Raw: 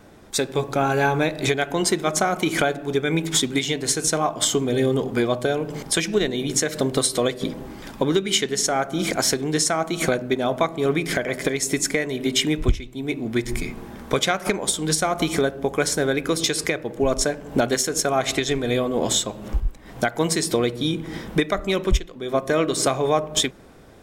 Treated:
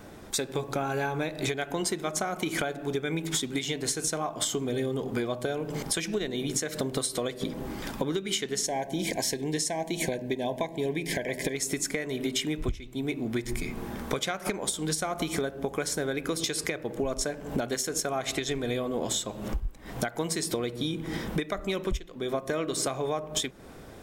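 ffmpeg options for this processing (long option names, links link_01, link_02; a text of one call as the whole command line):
ffmpeg -i in.wav -filter_complex "[0:a]asettb=1/sr,asplit=3[link_01][link_02][link_03];[link_01]atrim=end=8.664[link_04];[link_02]atrim=start=8.66:end=11.55,asetpts=PTS-STARTPTS,afade=type=in:duration=0.004:curve=qsin,afade=type=out:start_time=2.886:duration=0.004:curve=qsin,asuperstop=centerf=1300:order=12:qfactor=2.5[link_05];[link_03]atrim=start=11.546[link_06];[link_04][link_05]acrossfade=duration=0.004:curve1=hsin:curve2=qsin[link_07];[link_07][link_06]acrossfade=duration=0.004:curve1=qsin:curve2=hsin,highshelf=frequency=12000:gain=5,acompressor=threshold=-30dB:ratio=4,volume=1.5dB" out.wav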